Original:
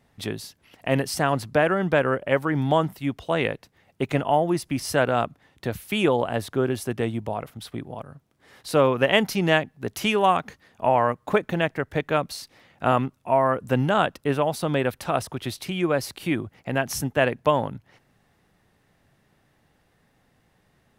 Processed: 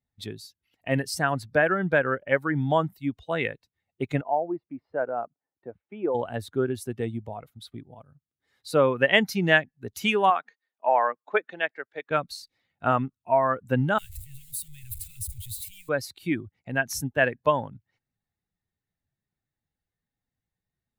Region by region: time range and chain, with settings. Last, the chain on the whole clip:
4.21–6.15 s: band-pass filter 640 Hz, Q 0.8 + distance through air 400 m
10.30–12.11 s: band-pass 370–4800 Hz + three bands expanded up and down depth 40%
13.98–15.89 s: jump at every zero crossing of -24.5 dBFS + inverse Chebyshev band-stop 260–860 Hz, stop band 60 dB + high-order bell 2.7 kHz -11 dB 2.8 oct
whole clip: expander on every frequency bin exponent 1.5; dynamic bell 1.7 kHz, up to +6 dB, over -43 dBFS, Q 2.1

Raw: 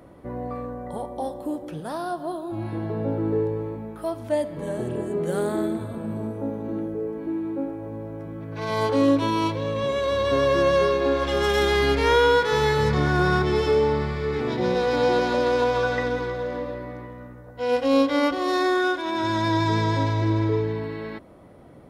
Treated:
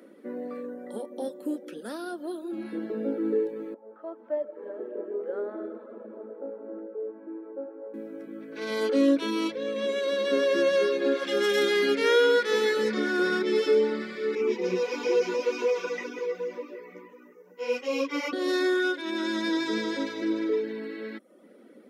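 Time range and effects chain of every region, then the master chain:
3.74–7.94 s: Butterworth band-pass 720 Hz, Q 0.94 + multi-head delay 82 ms, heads first and second, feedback 71%, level -15.5 dB
14.35–18.33 s: rippled EQ curve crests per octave 0.77, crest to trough 13 dB + three-phase chorus
whole clip: reverb removal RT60 0.58 s; elliptic high-pass 210 Hz, stop band 40 dB; high-order bell 860 Hz -11.5 dB 1 oct

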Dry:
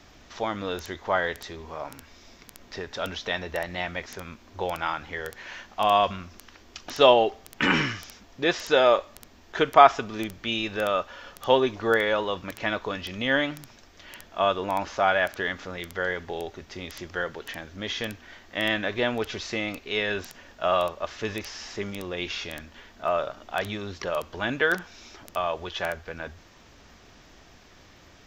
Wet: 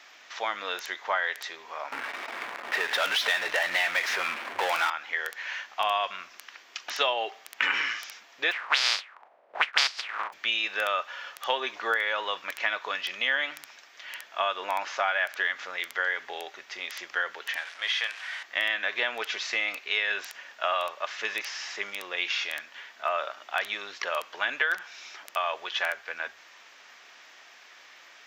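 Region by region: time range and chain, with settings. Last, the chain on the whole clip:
1.92–4.90 s: level-controlled noise filter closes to 1.2 kHz, open at -26 dBFS + power-law waveshaper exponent 0.5
8.51–10.32 s: spectral contrast reduction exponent 0.14 + touch-sensitive low-pass 520–4800 Hz up, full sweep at -16 dBFS
17.56–18.43 s: jump at every zero crossing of -39 dBFS + band-pass 740–6100 Hz
whole clip: high-pass 730 Hz 12 dB/octave; peaking EQ 2.1 kHz +7 dB 1.5 oct; compression 5:1, threshold -23 dBFS

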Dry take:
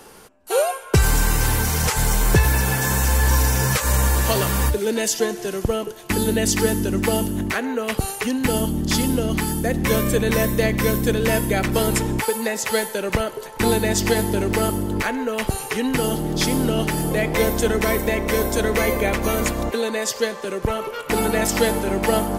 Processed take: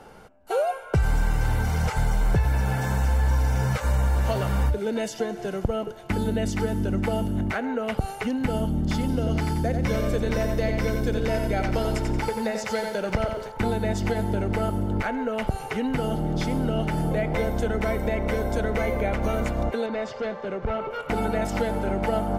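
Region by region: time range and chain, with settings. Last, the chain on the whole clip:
9.08–13.52 s: peaking EQ 5.2 kHz +8 dB 0.65 oct + bit-crushed delay 89 ms, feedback 35%, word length 7-bit, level -6 dB
19.86–20.91 s: hard clipper -22 dBFS + distance through air 130 m
whole clip: compression 3:1, threshold -21 dBFS; low-pass 1.3 kHz 6 dB/octave; comb 1.4 ms, depth 38%

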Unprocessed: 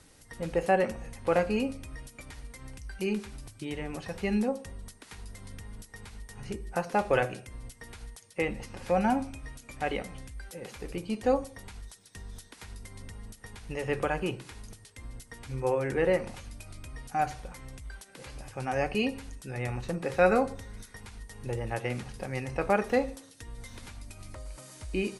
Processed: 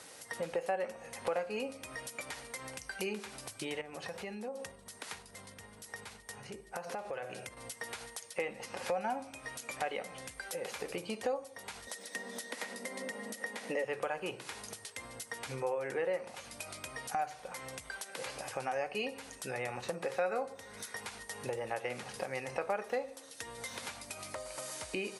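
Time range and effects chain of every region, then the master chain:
3.81–7.57 s: bass shelf 160 Hz +7.5 dB + compression 4:1, threshold -43 dBFS
11.87–13.85 s: upward compressor, threshold -50 dBFS + high-pass 190 Hz 24 dB/octave + small resonant body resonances 240/520/1900 Hz, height 12 dB, ringing for 25 ms
whole clip: high-pass 180 Hz 12 dB/octave; resonant low shelf 400 Hz -6.5 dB, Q 1.5; compression 3:1, threshold -45 dBFS; trim +7.5 dB

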